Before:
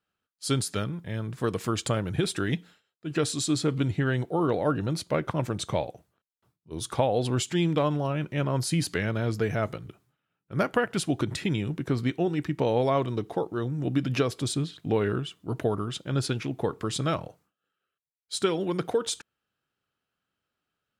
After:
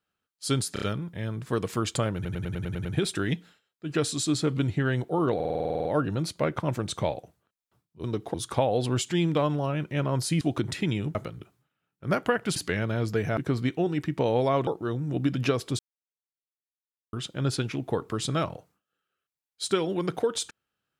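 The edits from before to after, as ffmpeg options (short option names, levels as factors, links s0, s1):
-filter_complex "[0:a]asplit=30[s0][s1][s2][s3][s4][s5][s6][s7][s8][s9][s10][s11][s12][s13][s14][s15][s16][s17][s18][s19][s20][s21][s22][s23][s24][s25][s26][s27][s28][s29];[s0]atrim=end=0.762[s30];[s1]atrim=start=0.728:end=0.762[s31];[s2]atrim=start=0.728:end=0.762[s32];[s3]atrim=start=0.728:end=2.162[s33];[s4]atrim=start=2.058:end=2.162[s34];[s5]atrim=start=2.058:end=2.162[s35];[s6]atrim=start=2.058:end=2.162[s36];[s7]atrim=start=2.058:end=2.162[s37];[s8]atrim=start=2.058:end=2.162[s38];[s9]atrim=start=2.058:end=2.162[s39];[s10]atrim=start=2.058:end=4.612[s40];[s11]atrim=start=4.558:end=4.612[s41];[s12]atrim=start=4.558:end=4.612[s42];[s13]atrim=start=4.558:end=4.612[s43];[s14]atrim=start=4.558:end=4.612[s44];[s15]atrim=start=4.558:end=4.612[s45];[s16]atrim=start=4.558:end=4.612[s46];[s17]atrim=start=4.558:end=4.612[s47];[s18]atrim=start=4.558:end=4.612[s48];[s19]atrim=start=4.558:end=4.612[s49];[s20]atrim=start=4.558:end=6.752[s50];[s21]atrim=start=13.078:end=13.382[s51];[s22]atrim=start=6.748:end=8.822[s52];[s23]atrim=start=11.038:end=11.782[s53];[s24]atrim=start=9.628:end=11.042[s54];[s25]atrim=start=8.818:end=9.632[s55];[s26]atrim=start=11.778:end=13.082[s56];[s27]atrim=start=13.378:end=14.5,asetpts=PTS-STARTPTS,afade=t=out:st=1.118:d=0.004:c=hsin[s57];[s28]atrim=start=14.5:end=15.84,asetpts=PTS-STARTPTS,volume=0[s58];[s29]atrim=start=15.84,asetpts=PTS-STARTPTS,afade=t=in:d=0.004:c=hsin[s59];[s30][s31]acrossfade=d=0.004:c1=hsin:c2=hsin[s60];[s60][s32]acrossfade=d=0.004:c1=hsin:c2=hsin[s61];[s61][s33]acrossfade=d=0.004:c1=hsin:c2=hsin[s62];[s62][s34]acrossfade=d=0.004:c1=hsin:c2=hsin[s63];[s63][s35]acrossfade=d=0.004:c1=hsin:c2=hsin[s64];[s64][s36]acrossfade=d=0.004:c1=hsin:c2=hsin[s65];[s65][s37]acrossfade=d=0.004:c1=hsin:c2=hsin[s66];[s66][s38]acrossfade=d=0.004:c1=hsin:c2=hsin[s67];[s67][s39]acrossfade=d=0.004:c1=hsin:c2=hsin[s68];[s68][s40]acrossfade=d=0.004:c1=hsin:c2=hsin[s69];[s69][s41]acrossfade=d=0.004:c1=hsin:c2=hsin[s70];[s70][s42]acrossfade=d=0.004:c1=hsin:c2=hsin[s71];[s71][s43]acrossfade=d=0.004:c1=hsin:c2=hsin[s72];[s72][s44]acrossfade=d=0.004:c1=hsin:c2=hsin[s73];[s73][s45]acrossfade=d=0.004:c1=hsin:c2=hsin[s74];[s74][s46]acrossfade=d=0.004:c1=hsin:c2=hsin[s75];[s75][s47]acrossfade=d=0.004:c1=hsin:c2=hsin[s76];[s76][s48]acrossfade=d=0.004:c1=hsin:c2=hsin[s77];[s77][s49]acrossfade=d=0.004:c1=hsin:c2=hsin[s78];[s78][s50]acrossfade=d=0.004:c1=hsin:c2=hsin[s79];[s79][s51]acrossfade=d=0.004:c1=hsin:c2=hsin[s80];[s80][s52]acrossfade=d=0.004:c1=hsin:c2=hsin[s81];[s81][s53]acrossfade=d=0.004:c1=hsin:c2=hsin[s82];[s82][s54]acrossfade=d=0.004:c1=hsin:c2=hsin[s83];[s83][s55]acrossfade=d=0.004:c1=hsin:c2=hsin[s84];[s84][s56]acrossfade=d=0.004:c1=hsin:c2=hsin[s85];[s57][s58][s59]concat=n=3:v=0:a=1[s86];[s85][s86]acrossfade=d=0.004:c1=hsin:c2=hsin"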